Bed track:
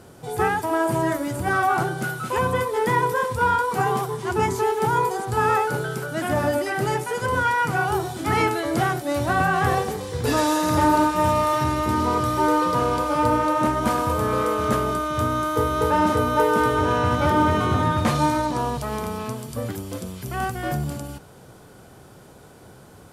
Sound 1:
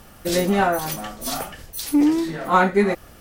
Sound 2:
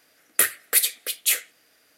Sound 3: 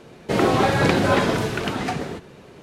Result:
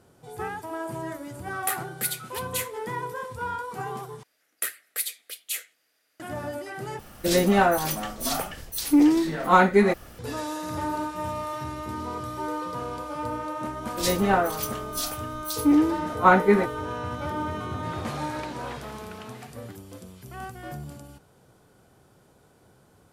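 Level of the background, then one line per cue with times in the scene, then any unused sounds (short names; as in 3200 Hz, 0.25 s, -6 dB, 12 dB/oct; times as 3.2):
bed track -11.5 dB
1.28 add 2 -9.5 dB
4.23 replace with 2 -10 dB + low shelf 300 Hz -7 dB
6.99 replace with 1 -0.5 dB
13.71 add 1 -3.5 dB + three-band expander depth 100%
17.54 add 3 -17.5 dB + low shelf 330 Hz -11.5 dB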